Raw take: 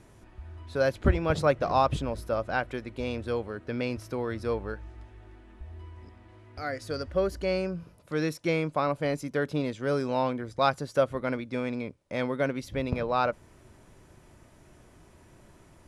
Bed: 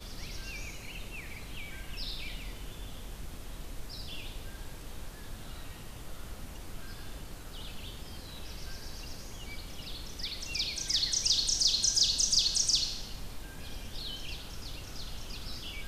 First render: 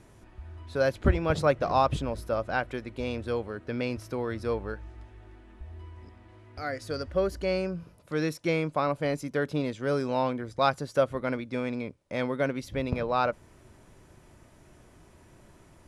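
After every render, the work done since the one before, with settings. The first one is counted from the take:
no processing that can be heard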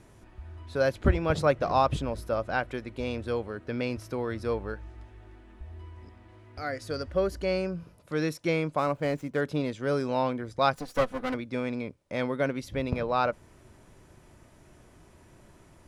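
0:08.78–0:09.41: running median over 9 samples
0:10.75–0:11.34: lower of the sound and its delayed copy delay 4 ms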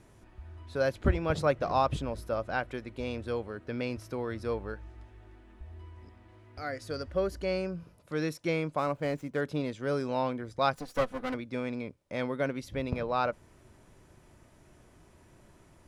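level −3 dB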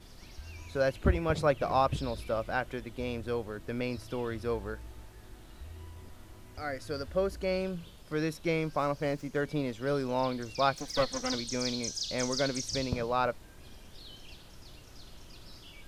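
mix in bed −10 dB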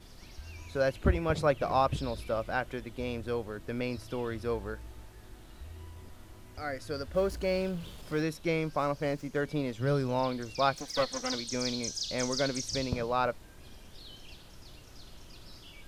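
0:07.14–0:08.22: mu-law and A-law mismatch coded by mu
0:09.78–0:10.18: parametric band 120 Hz +14.5 dB → +5.5 dB
0:10.81–0:11.53: low-shelf EQ 200 Hz −6 dB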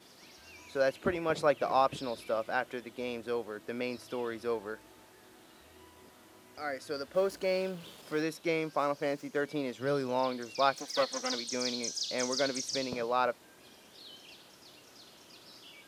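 high-pass filter 260 Hz 12 dB per octave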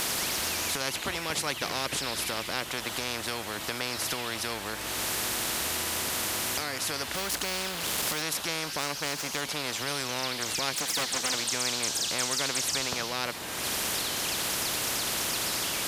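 upward compression, threshold −32 dBFS
every bin compressed towards the loudest bin 4 to 1

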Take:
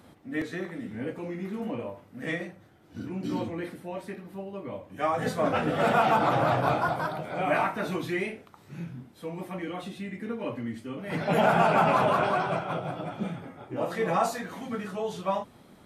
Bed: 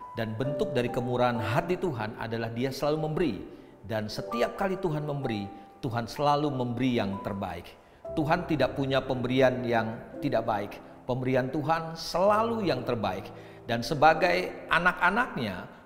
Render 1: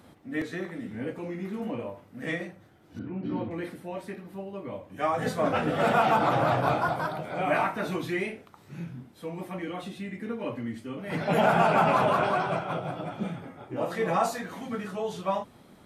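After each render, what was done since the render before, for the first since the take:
0:02.99–0:03.51: high-frequency loss of the air 390 metres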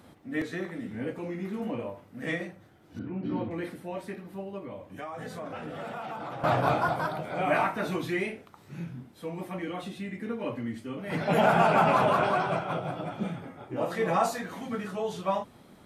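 0:04.58–0:06.44: downward compressor 5 to 1, threshold −36 dBFS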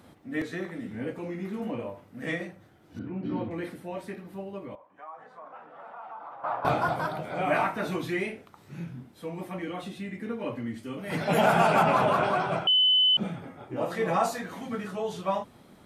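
0:04.75–0:06.65: resonant band-pass 1,000 Hz, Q 2.6
0:10.83–0:11.83: high-shelf EQ 4,600 Hz +8 dB
0:12.67–0:13.17: beep over 3,020 Hz −18 dBFS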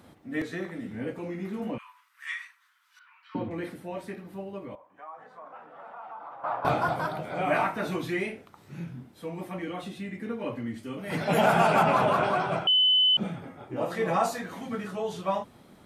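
0:01.78–0:03.35: Butterworth high-pass 1,000 Hz 72 dB per octave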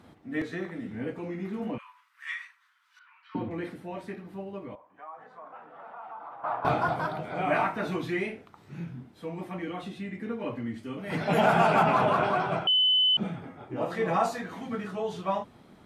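high-shelf EQ 7,500 Hz −11 dB
notch filter 550 Hz, Q 13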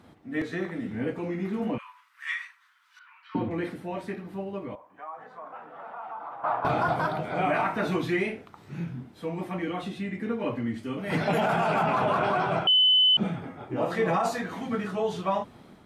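brickwall limiter −20.5 dBFS, peak gain reduction 10.5 dB
automatic gain control gain up to 4 dB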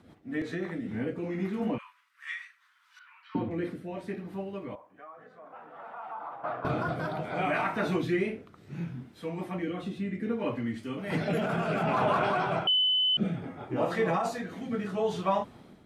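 rotating-speaker cabinet horn 5.5 Hz, later 0.65 Hz, at 0:00.49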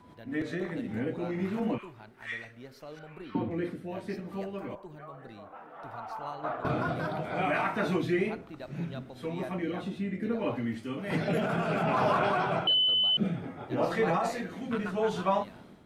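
mix in bed −18 dB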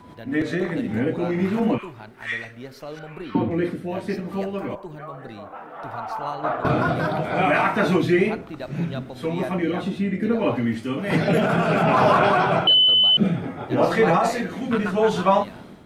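level +9.5 dB

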